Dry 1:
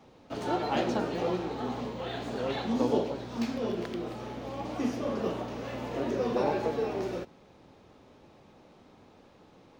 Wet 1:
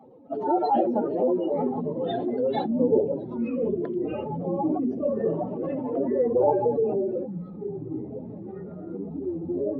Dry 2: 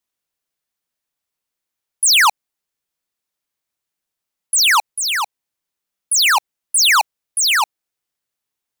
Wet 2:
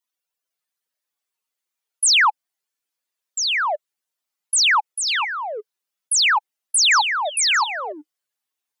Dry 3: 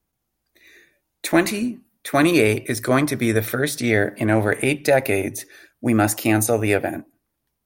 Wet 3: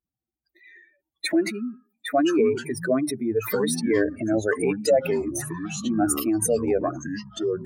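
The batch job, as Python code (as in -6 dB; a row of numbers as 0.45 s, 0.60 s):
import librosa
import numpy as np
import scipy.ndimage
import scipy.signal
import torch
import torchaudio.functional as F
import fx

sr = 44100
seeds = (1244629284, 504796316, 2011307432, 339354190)

y = fx.spec_expand(x, sr, power=2.6)
y = fx.echo_pitch(y, sr, ms=505, semitones=-6, count=3, db_per_echo=-6.0)
y = fx.highpass(y, sr, hz=470.0, slope=6)
y = librosa.util.normalize(y) * 10.0 ** (-9 / 20.0)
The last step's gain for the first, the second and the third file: +10.5 dB, -2.5 dB, +0.5 dB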